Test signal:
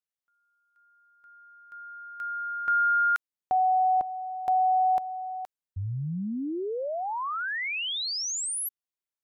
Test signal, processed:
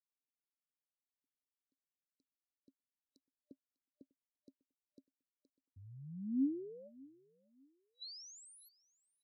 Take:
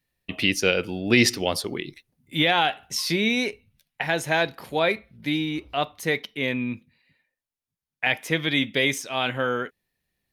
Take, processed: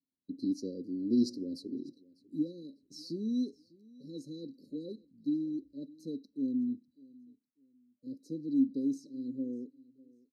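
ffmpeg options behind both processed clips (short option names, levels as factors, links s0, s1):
-filter_complex "[0:a]asplit=3[s0][s1][s2];[s0]bandpass=f=270:t=q:w=8,volume=1[s3];[s1]bandpass=f=2290:t=q:w=8,volume=0.501[s4];[s2]bandpass=f=3010:t=q:w=8,volume=0.355[s5];[s3][s4][s5]amix=inputs=3:normalize=0,aecho=1:1:598|1196:0.0668|0.018,afftfilt=real='re*(1-between(b*sr/4096,600,3900))':imag='im*(1-between(b*sr/4096,600,3900))':win_size=4096:overlap=0.75,volume=1.19"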